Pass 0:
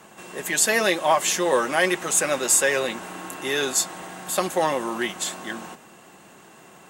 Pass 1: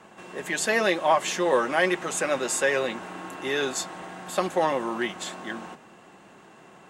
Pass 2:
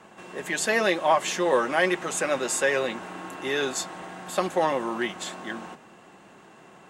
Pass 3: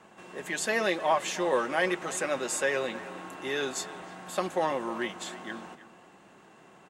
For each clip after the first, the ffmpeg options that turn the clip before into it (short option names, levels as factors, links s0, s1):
-af "aemphasis=mode=reproduction:type=50fm,bandreject=f=50:t=h:w=6,bandreject=f=100:t=h:w=6,bandreject=f=150:t=h:w=6,volume=0.841"
-af anull
-filter_complex "[0:a]asplit=2[s0][s1];[s1]adelay=310,highpass=300,lowpass=3400,asoftclip=type=hard:threshold=0.126,volume=0.178[s2];[s0][s2]amix=inputs=2:normalize=0,volume=0.596"